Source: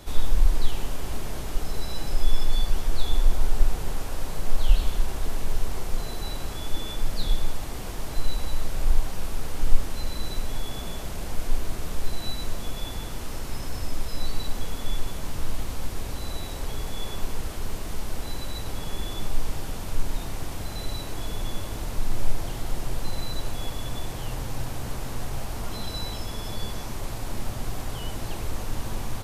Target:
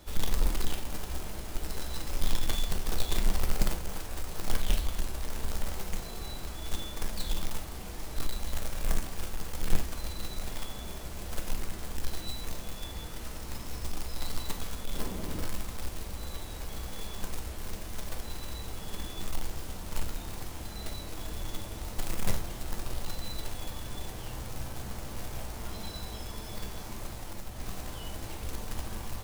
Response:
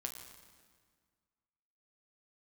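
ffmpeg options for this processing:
-filter_complex "[0:a]asettb=1/sr,asplit=3[link_01][link_02][link_03];[link_01]atrim=end=14.944[link_04];[link_02]atrim=start=14.94:end=15.45,asetpts=PTS-STARTPTS,afade=type=in:duration=0.004:curve=qsin,afade=type=out:start_time=0.506:duration=0.004:curve=qsin,equalizer=frequency=280:width_type=o:width=2.3:gain=10.5[link_05];[link_03]atrim=start=15.446[link_06];[link_04][link_05]acrossfade=duration=0.004:curve1=hsin:curve2=qsin[link_07];[link_07][link_06]acrossfade=duration=0.004:curve1=qsin:curve2=hsin,asettb=1/sr,asplit=3[link_08][link_09][link_10];[link_08]atrim=end=27.084[link_11];[link_09]atrim=start=27.08:end=27.6,asetpts=PTS-STARTPTS,afade=type=in:duration=0.004:curve=qsin,afade=type=out:start_time=0.516:duration=0.004:curve=qsin,acompressor=threshold=-26dB:ratio=4[link_12];[link_10]atrim=start=27.596[link_13];[link_11][link_12]acrossfade=duration=0.004:curve1=hsin:curve2=qsin[link_14];[link_14][link_13]acrossfade=duration=0.004:curve1=qsin:curve2=hsin,acrusher=bits=3:mode=log:mix=0:aa=0.000001[link_15];[1:a]atrim=start_sample=2205,atrim=end_sample=3969[link_16];[link_15][link_16]afir=irnorm=-1:irlink=0,volume=-5dB"

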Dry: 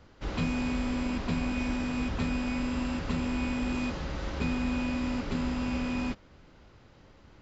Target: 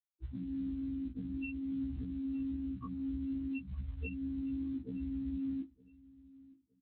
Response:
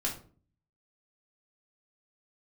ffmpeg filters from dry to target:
-filter_complex "[0:a]highpass=frequency=55:width=0.5412,highpass=frequency=55:width=1.3066,bandreject=frequency=60:width_type=h:width=6,bandreject=frequency=120:width_type=h:width=6,bandreject=frequency=180:width_type=h:width=6,bandreject=frequency=240:width_type=h:width=6,bandreject=frequency=300:width_type=h:width=6,bandreject=frequency=360:width_type=h:width=6,afftfilt=real='re*gte(hypot(re,im),0.1)':imag='im*gte(hypot(re,im),0.1)':win_size=1024:overlap=0.75,lowshelf=frequency=650:width_type=q:width=1.5:gain=-14,acrossover=split=1300|2900[link_01][link_02][link_03];[link_01]acompressor=threshold=-50dB:ratio=4[link_04];[link_02]acompressor=threshold=-57dB:ratio=4[link_05];[link_03]acompressor=threshold=-57dB:ratio=4[link_06];[link_04][link_05][link_06]amix=inputs=3:normalize=0,alimiter=level_in=22.5dB:limit=-24dB:level=0:latency=1:release=262,volume=-22.5dB,acrusher=bits=7:mode=log:mix=0:aa=0.000001,asplit=2[link_07][link_08];[link_08]aecho=0:1:996|1992:0.0794|0.023[link_09];[link_07][link_09]amix=inputs=2:normalize=0,aresample=8000,aresample=44100,asetrate=48000,aresample=44100,afftfilt=real='re*1.73*eq(mod(b,3),0)':imag='im*1.73*eq(mod(b,3),0)':win_size=2048:overlap=0.75,volume=17dB"

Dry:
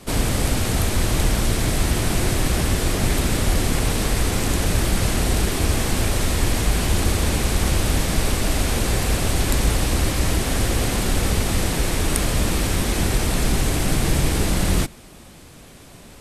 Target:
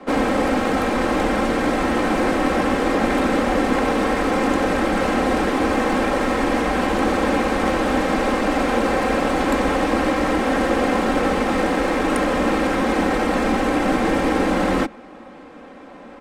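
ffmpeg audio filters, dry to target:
ffmpeg -i in.wav -filter_complex "[0:a]adynamicsmooth=sensitivity=4.5:basefreq=4400,acrossover=split=230 2000:gain=0.0794 1 0.158[link_01][link_02][link_03];[link_01][link_02][link_03]amix=inputs=3:normalize=0,aecho=1:1:3.8:0.57,volume=8dB" out.wav

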